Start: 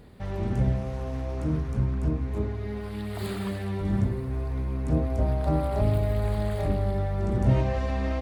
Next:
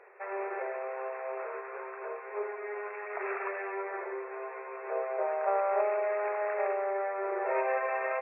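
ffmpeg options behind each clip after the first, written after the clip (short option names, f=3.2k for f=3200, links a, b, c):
-af "afftfilt=real='re*between(b*sr/4096,360,2700)':imag='im*between(b*sr/4096,360,2700)':win_size=4096:overlap=0.75,equalizer=f=1.5k:t=o:w=2.9:g=10.5,volume=-4dB"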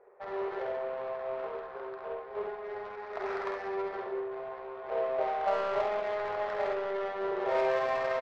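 -af "adynamicsmooth=sensitivity=2.5:basefreq=750,aecho=1:1:49|67:0.531|0.531"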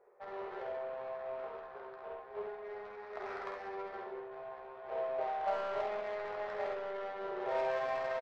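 -filter_complex "[0:a]asplit=2[a][b];[b]adelay=14,volume=-8dB[c];[a][c]amix=inputs=2:normalize=0,volume=-6.5dB"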